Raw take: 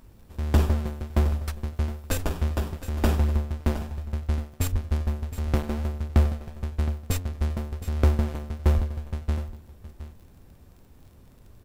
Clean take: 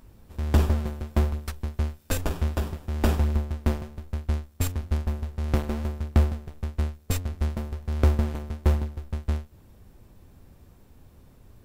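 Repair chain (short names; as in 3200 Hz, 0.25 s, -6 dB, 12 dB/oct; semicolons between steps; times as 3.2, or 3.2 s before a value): de-click; 4.71–4.83 HPF 140 Hz 24 dB/oct; 8.75–8.87 HPF 140 Hz 24 dB/oct; inverse comb 0.716 s -13.5 dB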